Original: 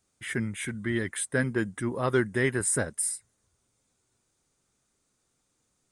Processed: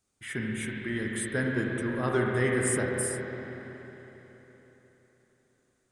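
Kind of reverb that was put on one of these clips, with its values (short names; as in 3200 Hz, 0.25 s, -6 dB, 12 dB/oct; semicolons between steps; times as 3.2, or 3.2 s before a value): spring tank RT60 3.9 s, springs 32/42/46 ms, chirp 40 ms, DRR -1.5 dB; gain -4 dB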